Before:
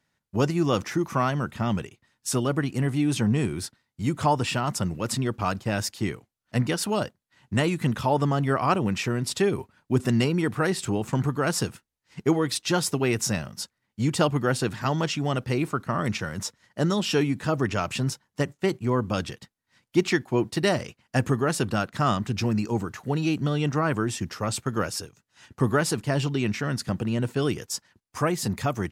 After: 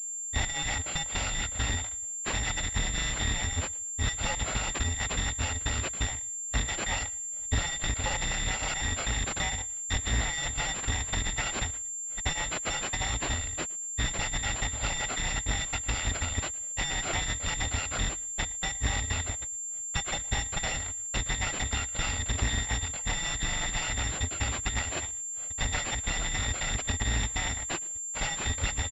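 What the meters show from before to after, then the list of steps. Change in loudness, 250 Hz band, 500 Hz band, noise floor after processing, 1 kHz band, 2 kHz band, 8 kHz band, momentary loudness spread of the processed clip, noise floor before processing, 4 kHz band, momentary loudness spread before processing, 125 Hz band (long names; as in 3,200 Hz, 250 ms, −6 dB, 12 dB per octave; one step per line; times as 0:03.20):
−4.0 dB, −16.0 dB, −15.0 dB, −37 dBFS, −7.5 dB, +0.5 dB, +7.0 dB, 3 LU, −80 dBFS, +1.5 dB, 7 LU, −8.0 dB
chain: samples in bit-reversed order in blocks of 256 samples
in parallel at −11 dB: wrap-around overflow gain 13 dB
on the sum: downward compressor, threshold −26 dBFS, peak gain reduction 11 dB
low-shelf EQ 250 Hz +11.5 dB
repeating echo 114 ms, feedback 28%, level −22.5 dB
switching amplifier with a slow clock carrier 7,300 Hz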